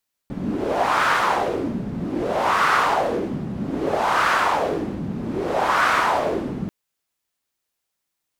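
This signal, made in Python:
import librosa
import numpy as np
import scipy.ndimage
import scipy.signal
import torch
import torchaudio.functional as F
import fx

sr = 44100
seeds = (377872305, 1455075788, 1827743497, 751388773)

y = fx.wind(sr, seeds[0], length_s=6.39, low_hz=190.0, high_hz=1300.0, q=2.7, gusts=4, swing_db=9.5)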